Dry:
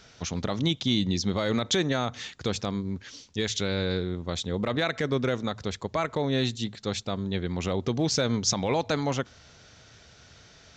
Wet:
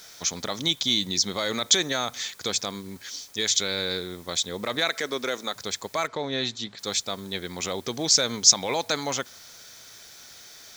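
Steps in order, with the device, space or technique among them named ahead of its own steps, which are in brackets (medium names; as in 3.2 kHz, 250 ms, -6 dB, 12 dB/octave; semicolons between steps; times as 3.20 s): 4.89–5.56 s: high-pass 240 Hz 12 dB/octave; turntable without a phono preamp (RIAA curve recording; white noise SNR 25 dB); band-stop 2.8 kHz, Q 9; 6.07–6.79 s: distance through air 130 m; trim +1 dB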